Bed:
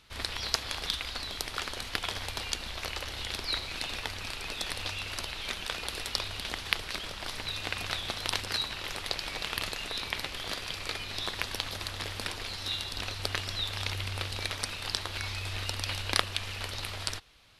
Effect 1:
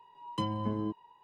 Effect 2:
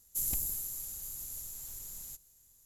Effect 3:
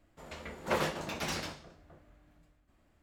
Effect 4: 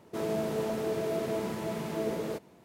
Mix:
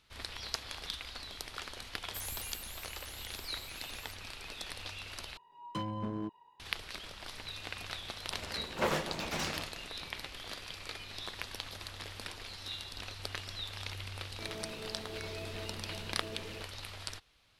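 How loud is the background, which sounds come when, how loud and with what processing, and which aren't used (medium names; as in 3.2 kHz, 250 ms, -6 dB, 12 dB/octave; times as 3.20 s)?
bed -8 dB
1.99 s: add 2 -9.5 dB + vibrato with a chosen wave saw up 4.7 Hz, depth 250 cents
5.37 s: replace with 1 -3.5 dB + hard clipper -27.5 dBFS
8.11 s: add 3 -0.5 dB
14.26 s: add 4 -14 dB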